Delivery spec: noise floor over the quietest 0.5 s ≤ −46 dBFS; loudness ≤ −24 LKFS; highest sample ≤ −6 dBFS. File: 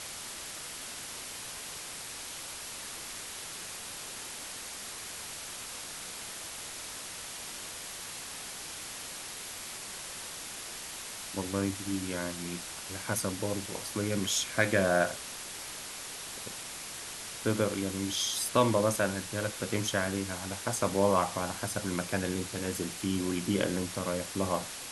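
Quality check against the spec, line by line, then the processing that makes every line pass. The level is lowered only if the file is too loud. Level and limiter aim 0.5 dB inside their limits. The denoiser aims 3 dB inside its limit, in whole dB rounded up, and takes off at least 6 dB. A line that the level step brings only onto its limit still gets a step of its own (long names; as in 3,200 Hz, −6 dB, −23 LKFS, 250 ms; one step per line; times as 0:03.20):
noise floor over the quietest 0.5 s −42 dBFS: out of spec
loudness −33.5 LKFS: in spec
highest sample −10.5 dBFS: in spec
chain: broadband denoise 7 dB, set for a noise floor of −42 dBFS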